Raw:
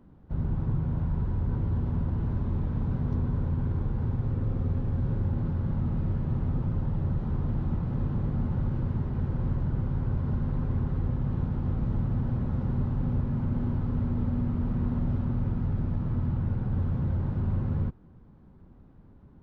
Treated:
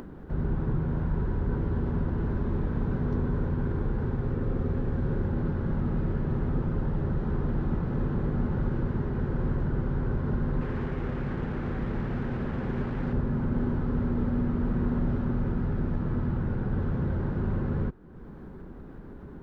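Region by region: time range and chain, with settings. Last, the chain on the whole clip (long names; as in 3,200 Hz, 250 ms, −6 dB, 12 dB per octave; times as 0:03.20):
0:10.61–0:13.13: linear delta modulator 64 kbit/s, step −36 dBFS + low-pass filter 1,700 Hz + low-shelf EQ 180 Hz −5 dB
whole clip: graphic EQ with 15 bands 100 Hz −7 dB, 400 Hz +7 dB, 1,600 Hz +7 dB; upward compression, threshold −35 dBFS; level +2 dB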